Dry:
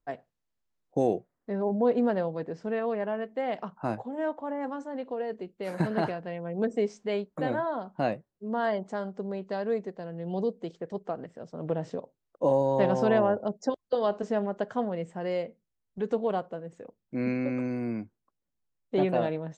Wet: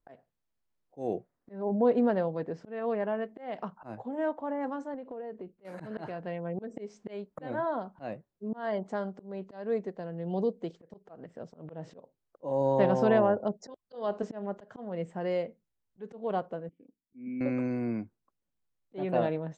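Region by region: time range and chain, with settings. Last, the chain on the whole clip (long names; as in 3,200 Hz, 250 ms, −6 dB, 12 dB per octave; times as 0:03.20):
0:04.94–0:05.65: low-pass filter 1,500 Hz 6 dB per octave + downward compressor 5 to 1, threshold −37 dBFS
0:16.69–0:17.41: formant resonators in series i + low-shelf EQ 220 Hz −6 dB
whole clip: high-shelf EQ 3,600 Hz −5.5 dB; volume swells 251 ms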